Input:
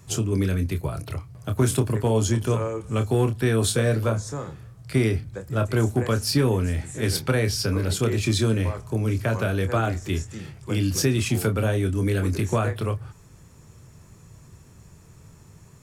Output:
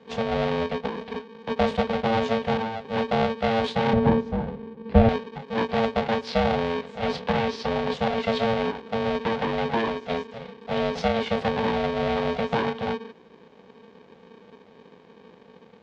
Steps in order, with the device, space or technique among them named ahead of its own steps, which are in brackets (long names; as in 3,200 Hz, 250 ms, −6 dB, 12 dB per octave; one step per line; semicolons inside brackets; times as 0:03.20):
ring modulator pedal into a guitar cabinet (ring modulator with a square carrier 340 Hz; loudspeaker in its box 88–3,600 Hz, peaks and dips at 110 Hz −7 dB, 270 Hz −6 dB, 1,300 Hz −7 dB, 1,900 Hz −4 dB, 2,700 Hz −4 dB)
0:03.93–0:05.09: spectral tilt −4 dB per octave